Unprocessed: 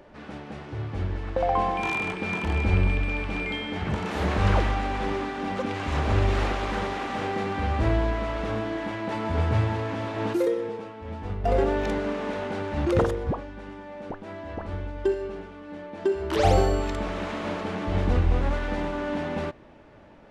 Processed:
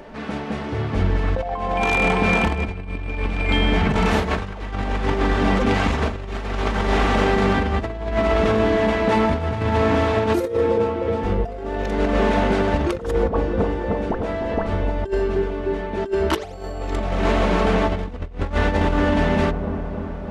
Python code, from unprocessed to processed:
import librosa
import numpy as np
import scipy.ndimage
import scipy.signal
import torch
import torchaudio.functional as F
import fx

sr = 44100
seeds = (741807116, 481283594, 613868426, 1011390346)

y = x + 0.4 * np.pad(x, (int(4.5 * sr / 1000.0), 0))[:len(x)]
y = fx.echo_wet_lowpass(y, sr, ms=305, feedback_pct=71, hz=960.0, wet_db=-9.0)
y = fx.over_compress(y, sr, threshold_db=-27.0, ratio=-0.5)
y = y * 10.0 ** (7.5 / 20.0)